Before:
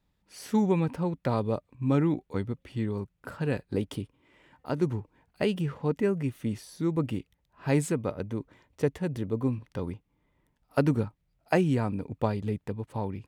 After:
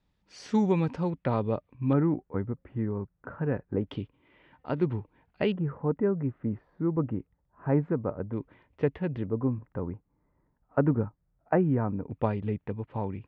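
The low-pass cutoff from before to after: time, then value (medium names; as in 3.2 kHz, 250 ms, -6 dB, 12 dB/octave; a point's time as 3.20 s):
low-pass 24 dB/octave
6.4 kHz
from 1.10 s 3.3 kHz
from 1.93 s 1.7 kHz
from 3.87 s 3.5 kHz
from 5.52 s 1.5 kHz
from 8.33 s 3 kHz
from 9.26 s 1.6 kHz
from 12.11 s 2.9 kHz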